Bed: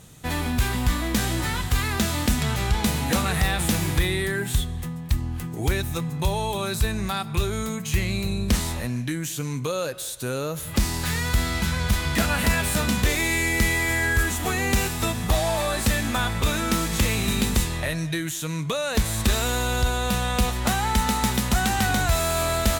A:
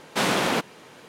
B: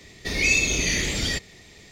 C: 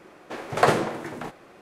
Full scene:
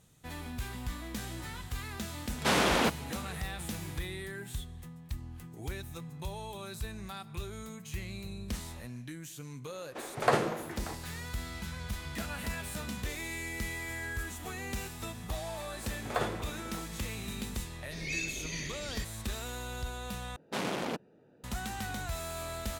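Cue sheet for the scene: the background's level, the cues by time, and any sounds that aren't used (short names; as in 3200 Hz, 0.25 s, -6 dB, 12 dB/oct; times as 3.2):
bed -15.5 dB
2.29 add A -3.5 dB
9.65 add C -7 dB
15.53 add C -13.5 dB
17.66 add B -15.5 dB
20.36 replace with A -9 dB + Wiener smoothing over 41 samples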